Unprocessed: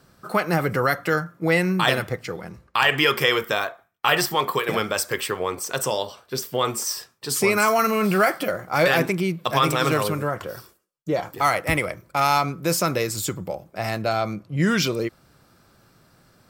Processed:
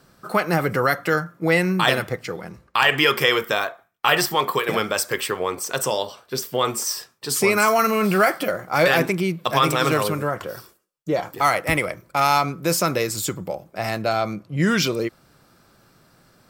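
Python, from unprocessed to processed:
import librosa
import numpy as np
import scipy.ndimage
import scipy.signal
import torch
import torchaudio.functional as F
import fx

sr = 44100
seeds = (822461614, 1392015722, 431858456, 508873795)

y = fx.peak_eq(x, sr, hz=77.0, db=-4.5, octaves=1.3)
y = y * librosa.db_to_amplitude(1.5)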